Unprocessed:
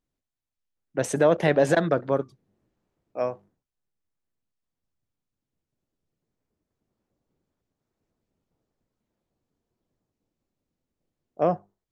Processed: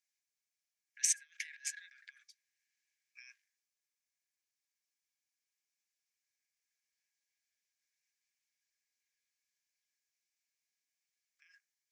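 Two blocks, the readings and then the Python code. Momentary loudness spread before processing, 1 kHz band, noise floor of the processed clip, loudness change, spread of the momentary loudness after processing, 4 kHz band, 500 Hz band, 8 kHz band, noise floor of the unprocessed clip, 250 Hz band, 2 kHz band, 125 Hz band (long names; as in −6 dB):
14 LU, below −40 dB, below −85 dBFS, −11.0 dB, 14 LU, −5.5 dB, below −40 dB, +5.0 dB, below −85 dBFS, below −40 dB, −16.0 dB, below −40 dB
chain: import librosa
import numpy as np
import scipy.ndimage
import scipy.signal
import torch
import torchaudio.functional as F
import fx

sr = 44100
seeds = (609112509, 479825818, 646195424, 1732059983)

y = fx.over_compress(x, sr, threshold_db=-31.0, ratio=-1.0)
y = scipy.signal.sosfilt(scipy.signal.cheby1(6, 9, 1600.0, 'highpass', fs=sr, output='sos'), y)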